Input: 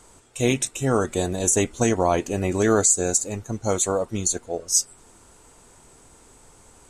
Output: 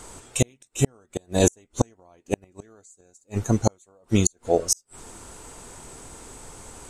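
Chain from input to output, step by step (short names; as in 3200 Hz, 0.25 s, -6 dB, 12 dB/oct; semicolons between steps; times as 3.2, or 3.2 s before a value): flipped gate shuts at -14 dBFS, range -42 dB; gain +8.5 dB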